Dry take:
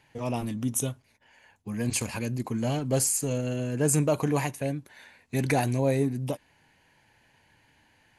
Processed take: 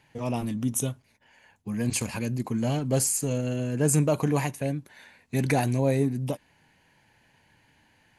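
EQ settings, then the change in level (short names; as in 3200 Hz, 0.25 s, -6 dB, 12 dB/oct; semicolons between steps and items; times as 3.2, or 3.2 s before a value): bell 180 Hz +3.5 dB 0.92 oct; 0.0 dB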